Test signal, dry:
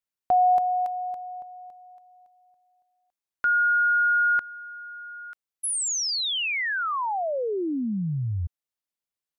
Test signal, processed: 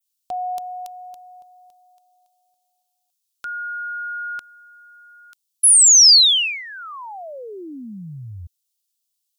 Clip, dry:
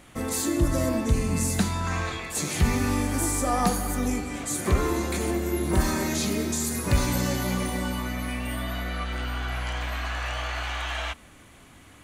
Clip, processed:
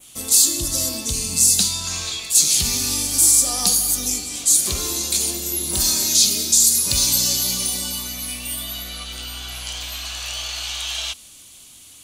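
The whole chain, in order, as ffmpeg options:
ffmpeg -i in.wav -af "aexciter=amount=9.3:drive=5.2:freq=2800,adynamicequalizer=threshold=0.0562:dfrequency=4800:dqfactor=1.6:tfrequency=4800:tqfactor=1.6:attack=5:release=100:ratio=0.375:range=2.5:mode=boostabove:tftype=bell,volume=-7dB" out.wav

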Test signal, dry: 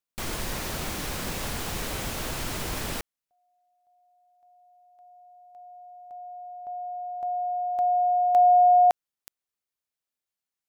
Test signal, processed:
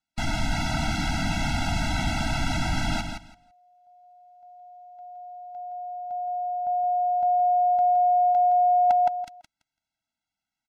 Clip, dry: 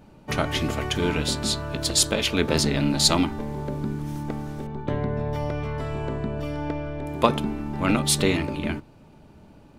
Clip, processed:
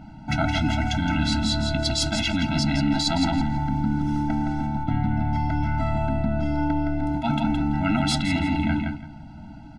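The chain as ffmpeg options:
ffmpeg -i in.wav -af "lowpass=5000,aecho=1:1:167|334|501:0.398|0.0677|0.0115,areverse,acompressor=threshold=-29dB:ratio=12:attack=34:release=54:knee=6:detection=rms,areverse,afftfilt=real='re*eq(mod(floor(b*sr/1024/320),2),0)':imag='im*eq(mod(floor(b*sr/1024/320),2),0)':win_size=1024:overlap=0.75,volume=9dB" out.wav

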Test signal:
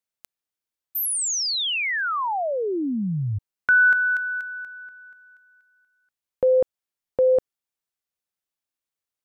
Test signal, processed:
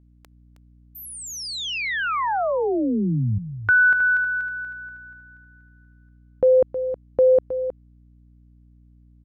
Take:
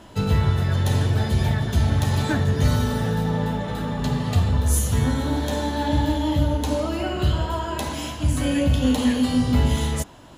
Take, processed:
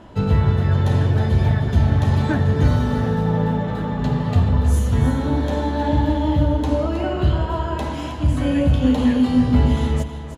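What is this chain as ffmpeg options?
ffmpeg -i in.wav -filter_complex "[0:a]lowpass=frequency=1600:poles=1,aeval=exprs='val(0)+0.00158*(sin(2*PI*60*n/s)+sin(2*PI*2*60*n/s)/2+sin(2*PI*3*60*n/s)/3+sin(2*PI*4*60*n/s)/4+sin(2*PI*5*60*n/s)/5)':channel_layout=same,asplit=2[link_01][link_02];[link_02]aecho=0:1:316:0.299[link_03];[link_01][link_03]amix=inputs=2:normalize=0,volume=3dB" out.wav

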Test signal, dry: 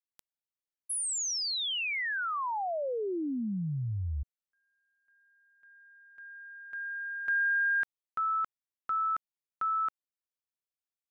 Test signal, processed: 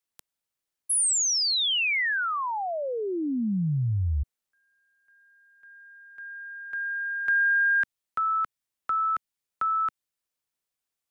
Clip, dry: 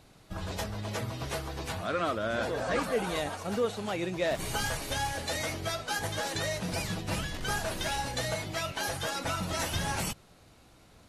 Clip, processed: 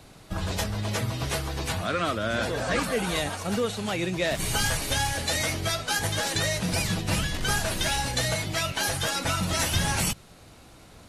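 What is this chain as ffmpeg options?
ffmpeg -i in.wav -filter_complex "[0:a]equalizer=frequency=9100:width=2.1:gain=2,acrossover=split=240|1600[link_01][link_02][link_03];[link_02]acompressor=threshold=-46dB:ratio=1.5:release=898:knee=2.83:detection=peak[link_04];[link_01][link_04][link_03]amix=inputs=3:normalize=0,volume=7.5dB" out.wav

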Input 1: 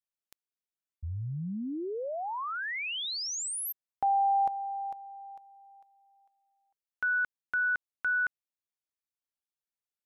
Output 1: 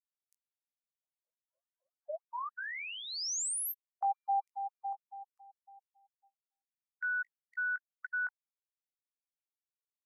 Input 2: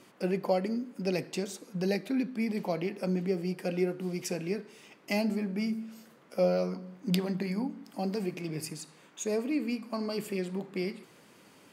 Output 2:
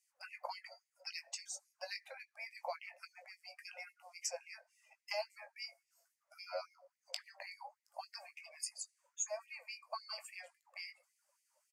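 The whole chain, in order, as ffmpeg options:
ffmpeg -i in.wav -filter_complex "[0:a]aemphasis=mode=reproduction:type=75fm,afftdn=noise_reduction=22:noise_floor=-50,aexciter=amount=16:drive=2.3:freq=5300,highpass=frequency=110:poles=1,acrossover=split=500|1000[link_01][link_02][link_03];[link_01]acompressor=threshold=-34dB:ratio=10[link_04];[link_02]acompressor=threshold=-39dB:ratio=2[link_05];[link_03]acompressor=threshold=-39dB:ratio=2[link_06];[link_04][link_05][link_06]amix=inputs=3:normalize=0,asplit=2[link_07][link_08];[link_08]adelay=19,volume=-9dB[link_09];[link_07][link_09]amix=inputs=2:normalize=0,afftfilt=real='re*gte(b*sr/1024,510*pow(1900/510,0.5+0.5*sin(2*PI*3.6*pts/sr)))':imag='im*gte(b*sr/1024,510*pow(1900/510,0.5+0.5*sin(2*PI*3.6*pts/sr)))':win_size=1024:overlap=0.75,volume=-2.5dB" out.wav

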